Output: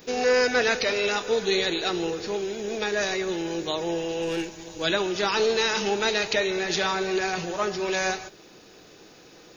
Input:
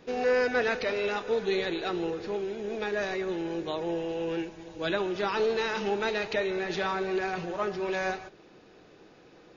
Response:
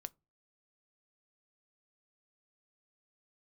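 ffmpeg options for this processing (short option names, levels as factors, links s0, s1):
-filter_complex "[0:a]asettb=1/sr,asplit=3[s0][s1][s2];[s0]atrim=end=4.224[s3];[s1]atrim=start=4.22:end=4.82,asetpts=PTS-STARTPTS,afade=t=in:d=0.004:c=qsin,afade=t=out:st=0.596:d=0.004:c=qsin,aeval=exprs='0.075*(cos(1*acos(clip(val(0)/0.075,-1,1)))-cos(1*PI/2))+0.00211*(cos(8*acos(clip(val(0)/0.075,-1,1)))-cos(8*PI/2))':c=same[s4];[s2]atrim=start=4.816[s5];[s3][s4]acrossfade=d=0.004:c1=hsin:c2=qsin[s6];[s6][s5]acrossfade=d=0.004:c1=qsin:c2=hsin,asplit=2[s7][s8];[s8]aderivative[s9];[1:a]atrim=start_sample=2205,highshelf=f=6200:g=7.5[s10];[s9][s10]afir=irnorm=-1:irlink=0,volume=5.96[s11];[s7][s11]amix=inputs=2:normalize=0,volume=1.41"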